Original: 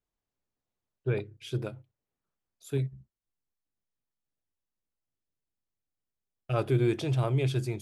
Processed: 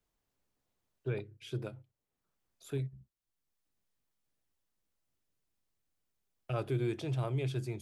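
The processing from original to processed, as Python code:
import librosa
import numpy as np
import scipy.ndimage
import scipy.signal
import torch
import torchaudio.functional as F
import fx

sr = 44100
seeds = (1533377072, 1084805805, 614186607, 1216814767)

y = fx.band_squash(x, sr, depth_pct=40)
y = y * 10.0 ** (-6.5 / 20.0)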